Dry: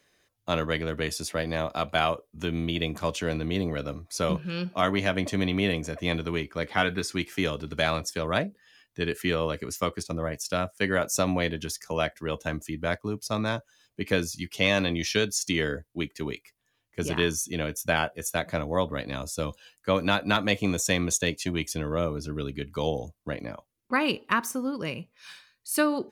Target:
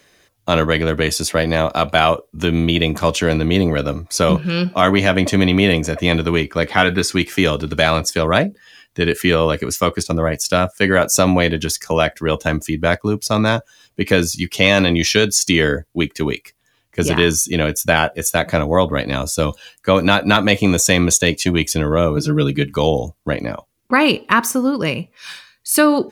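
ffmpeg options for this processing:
ffmpeg -i in.wav -filter_complex "[0:a]asettb=1/sr,asplit=3[link_01][link_02][link_03];[link_01]atrim=end=22.164[link_04];[link_02]atrim=start=22.16:end=22.74,asetpts=PTS-STARTPTS,afade=type=in:duration=0.004:curve=qsin,afade=type=out:start_time=0.576:duration=0.004:curve=qsin,aecho=1:1:6.4:0.97,atrim=end_sample=25578[link_05];[link_03]atrim=start=22.736[link_06];[link_04][link_05]acrossfade=duration=0.004:curve1=hsin:curve2=qsin[link_07];[link_07][link_06]acrossfade=duration=0.004:curve1=qsin:curve2=hsin,asplit=2[link_08][link_09];[link_09]alimiter=limit=-18dB:level=0:latency=1:release=18,volume=0.5dB[link_10];[link_08][link_10]amix=inputs=2:normalize=0,volume=6.5dB" out.wav

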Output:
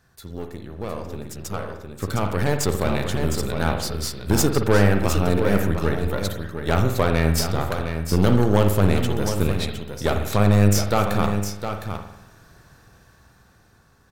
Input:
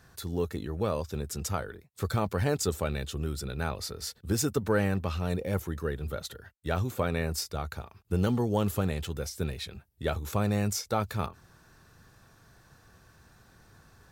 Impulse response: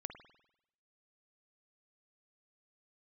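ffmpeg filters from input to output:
-filter_complex "[0:a]aeval=exprs='0.2*(cos(1*acos(clip(val(0)/0.2,-1,1)))-cos(1*PI/2))+0.0251*(cos(6*acos(clip(val(0)/0.2,-1,1)))-cos(6*PI/2))':channel_layout=same,aecho=1:1:710:0.398,dynaudnorm=framelen=340:gausssize=13:maxgain=16.5dB[link_01];[1:a]atrim=start_sample=2205[link_02];[link_01][link_02]afir=irnorm=-1:irlink=0"

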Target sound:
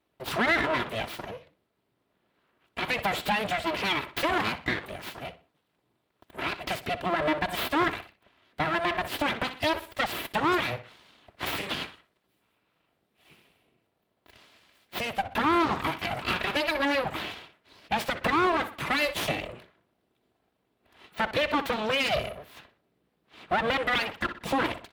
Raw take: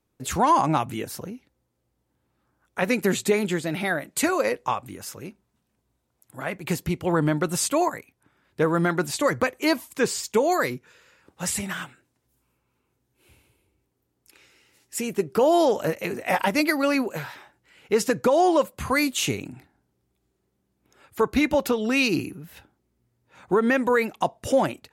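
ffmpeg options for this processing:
ffmpeg -i in.wav -filter_complex "[0:a]bandreject=frequency=6700:width=12,aecho=1:1:3:0.99,asplit=2[link_01][link_02];[link_02]adelay=61,lowpass=frequency=3300:poles=1,volume=-14dB,asplit=2[link_03][link_04];[link_04]adelay=61,lowpass=frequency=3300:poles=1,volume=0.35,asplit=2[link_05][link_06];[link_06]adelay=61,lowpass=frequency=3300:poles=1,volume=0.35[link_07];[link_01][link_03][link_05][link_07]amix=inputs=4:normalize=0,asplit=2[link_08][link_09];[link_09]acompressor=threshold=-25dB:ratio=6,volume=0dB[link_10];[link_08][link_10]amix=inputs=2:normalize=0,aeval=exprs='abs(val(0))':channel_layout=same,highpass=81,highshelf=frequency=4700:width_type=q:width=1.5:gain=-8,alimiter=limit=-12.5dB:level=0:latency=1:release=69,volume=-4dB" out.wav

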